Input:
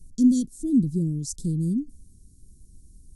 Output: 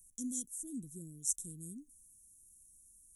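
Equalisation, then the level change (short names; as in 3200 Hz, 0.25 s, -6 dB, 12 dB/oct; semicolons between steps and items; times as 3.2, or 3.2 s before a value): Butterworth band-stop 4700 Hz, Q 3; pre-emphasis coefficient 0.97; bell 4000 Hz -12.5 dB 1 oct; +3.5 dB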